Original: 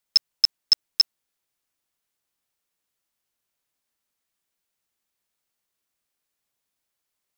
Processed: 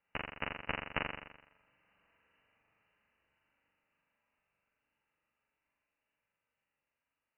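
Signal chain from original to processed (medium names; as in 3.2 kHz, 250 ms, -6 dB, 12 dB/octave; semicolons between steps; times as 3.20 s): Doppler pass-by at 1.88 s, 13 m/s, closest 10 m; distance through air 180 m; comb of notches 360 Hz; flutter echo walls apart 7.2 m, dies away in 0.89 s; frequency inversion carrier 2.9 kHz; trim +16 dB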